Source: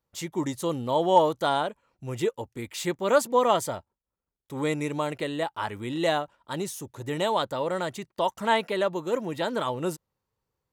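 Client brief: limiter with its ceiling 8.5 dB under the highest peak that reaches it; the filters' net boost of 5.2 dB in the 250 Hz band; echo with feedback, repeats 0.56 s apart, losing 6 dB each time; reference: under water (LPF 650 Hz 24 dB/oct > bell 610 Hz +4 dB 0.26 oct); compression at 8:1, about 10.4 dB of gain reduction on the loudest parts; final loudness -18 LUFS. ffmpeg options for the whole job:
-af "equalizer=f=250:t=o:g=7,acompressor=threshold=-24dB:ratio=8,alimiter=limit=-23.5dB:level=0:latency=1,lowpass=f=650:w=0.5412,lowpass=f=650:w=1.3066,equalizer=f=610:t=o:w=0.26:g=4,aecho=1:1:560|1120|1680|2240|2800|3360:0.501|0.251|0.125|0.0626|0.0313|0.0157,volume=15dB"

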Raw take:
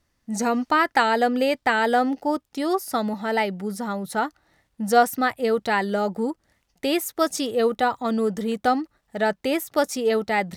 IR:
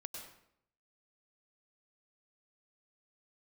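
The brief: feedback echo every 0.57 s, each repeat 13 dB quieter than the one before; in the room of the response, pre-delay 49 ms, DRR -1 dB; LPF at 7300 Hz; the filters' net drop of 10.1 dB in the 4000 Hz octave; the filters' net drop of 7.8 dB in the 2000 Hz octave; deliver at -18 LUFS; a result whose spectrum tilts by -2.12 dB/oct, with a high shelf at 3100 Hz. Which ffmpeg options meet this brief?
-filter_complex "[0:a]lowpass=7.3k,equalizer=f=2k:t=o:g=-7.5,highshelf=f=3.1k:g=-7.5,equalizer=f=4k:t=o:g=-4.5,aecho=1:1:570|1140|1710:0.224|0.0493|0.0108,asplit=2[a][b];[1:a]atrim=start_sample=2205,adelay=49[c];[b][c]afir=irnorm=-1:irlink=0,volume=4dB[d];[a][d]amix=inputs=2:normalize=0,volume=3dB"

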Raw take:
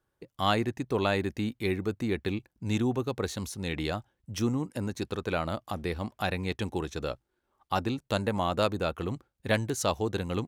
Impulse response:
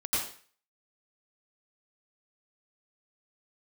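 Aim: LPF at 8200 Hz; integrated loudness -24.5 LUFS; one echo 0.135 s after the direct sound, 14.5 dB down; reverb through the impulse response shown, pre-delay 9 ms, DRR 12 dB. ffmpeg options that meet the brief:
-filter_complex "[0:a]lowpass=8.2k,aecho=1:1:135:0.188,asplit=2[a][b];[1:a]atrim=start_sample=2205,adelay=9[c];[b][c]afir=irnorm=-1:irlink=0,volume=-20dB[d];[a][d]amix=inputs=2:normalize=0,volume=6.5dB"

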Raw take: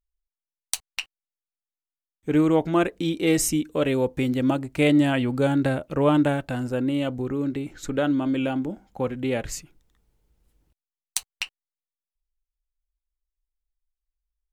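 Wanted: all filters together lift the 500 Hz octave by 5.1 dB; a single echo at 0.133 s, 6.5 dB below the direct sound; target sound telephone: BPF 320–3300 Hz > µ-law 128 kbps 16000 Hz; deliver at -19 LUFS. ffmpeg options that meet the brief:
-af "highpass=320,lowpass=3.3k,equalizer=f=500:t=o:g=7,aecho=1:1:133:0.473,volume=3dB" -ar 16000 -c:a pcm_mulaw

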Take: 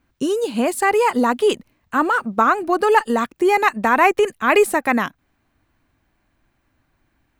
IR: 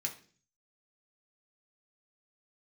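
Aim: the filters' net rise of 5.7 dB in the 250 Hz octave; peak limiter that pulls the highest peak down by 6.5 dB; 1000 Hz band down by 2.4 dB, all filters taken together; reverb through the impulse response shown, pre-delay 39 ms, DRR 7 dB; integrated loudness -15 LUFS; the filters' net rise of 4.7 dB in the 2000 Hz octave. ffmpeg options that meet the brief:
-filter_complex "[0:a]equalizer=f=250:t=o:g=7,equalizer=f=1k:t=o:g=-5.5,equalizer=f=2k:t=o:g=7.5,alimiter=limit=-7.5dB:level=0:latency=1,asplit=2[a][b];[1:a]atrim=start_sample=2205,adelay=39[c];[b][c]afir=irnorm=-1:irlink=0,volume=-8dB[d];[a][d]amix=inputs=2:normalize=0,volume=2dB"

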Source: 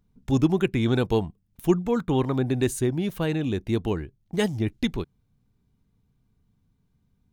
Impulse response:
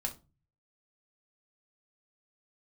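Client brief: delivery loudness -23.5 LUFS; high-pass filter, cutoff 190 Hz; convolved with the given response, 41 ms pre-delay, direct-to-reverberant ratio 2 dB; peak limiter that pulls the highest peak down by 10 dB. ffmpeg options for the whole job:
-filter_complex "[0:a]highpass=190,alimiter=limit=-19dB:level=0:latency=1,asplit=2[a][b];[1:a]atrim=start_sample=2205,adelay=41[c];[b][c]afir=irnorm=-1:irlink=0,volume=-3.5dB[d];[a][d]amix=inputs=2:normalize=0,volume=5dB"

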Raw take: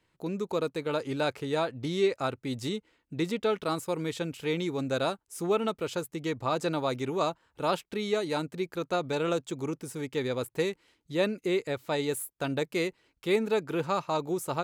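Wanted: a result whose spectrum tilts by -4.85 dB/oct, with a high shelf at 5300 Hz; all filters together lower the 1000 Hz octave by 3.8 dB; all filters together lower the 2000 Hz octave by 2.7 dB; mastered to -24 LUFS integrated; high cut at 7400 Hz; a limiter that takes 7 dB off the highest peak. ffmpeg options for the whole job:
-af "lowpass=7.4k,equalizer=f=1k:t=o:g=-4.5,equalizer=f=2k:t=o:g=-3,highshelf=f=5.3k:g=5,volume=10dB,alimiter=limit=-13dB:level=0:latency=1"

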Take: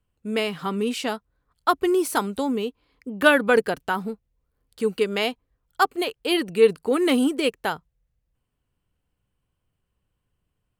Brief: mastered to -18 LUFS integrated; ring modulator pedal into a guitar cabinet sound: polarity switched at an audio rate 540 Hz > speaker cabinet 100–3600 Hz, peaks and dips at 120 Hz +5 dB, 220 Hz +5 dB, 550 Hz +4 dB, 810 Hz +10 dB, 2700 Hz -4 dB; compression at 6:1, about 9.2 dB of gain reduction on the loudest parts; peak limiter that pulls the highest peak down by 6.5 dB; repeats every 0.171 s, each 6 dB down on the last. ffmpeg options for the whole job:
-af "acompressor=threshold=-20dB:ratio=6,alimiter=limit=-16.5dB:level=0:latency=1,aecho=1:1:171|342|513|684|855|1026:0.501|0.251|0.125|0.0626|0.0313|0.0157,aeval=exprs='val(0)*sgn(sin(2*PI*540*n/s))':c=same,highpass=100,equalizer=f=120:t=q:w=4:g=5,equalizer=f=220:t=q:w=4:g=5,equalizer=f=550:t=q:w=4:g=4,equalizer=f=810:t=q:w=4:g=10,equalizer=f=2.7k:t=q:w=4:g=-4,lowpass=f=3.6k:w=0.5412,lowpass=f=3.6k:w=1.3066,volume=5.5dB"

